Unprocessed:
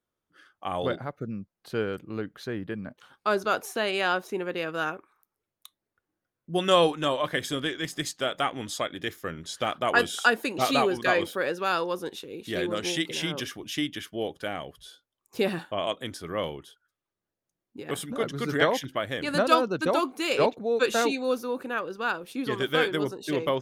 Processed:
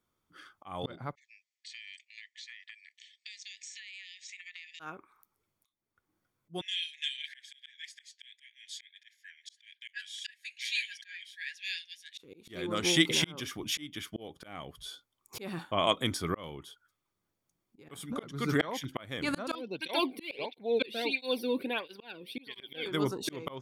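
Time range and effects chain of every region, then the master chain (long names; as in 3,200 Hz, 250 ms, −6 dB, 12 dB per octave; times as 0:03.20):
0:01.15–0:04.80: linear-phase brick-wall band-pass 1,700–8,200 Hz + downward compressor 16 to 1, threshold −46 dBFS
0:06.61–0:12.18: linear-phase brick-wall high-pass 1,600 Hz + high-frequency loss of the air 72 metres + flanger 1.6 Hz, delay 1.1 ms, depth 6.5 ms, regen +58%
0:19.55–0:22.86: parametric band 2,900 Hz +6.5 dB 2 octaves + phaser with its sweep stopped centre 3,000 Hz, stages 4 + through-zero flanger with one copy inverted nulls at 1.5 Hz, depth 1.4 ms
whole clip: comb filter 0.9 ms, depth 33%; volume swells 531 ms; level +4 dB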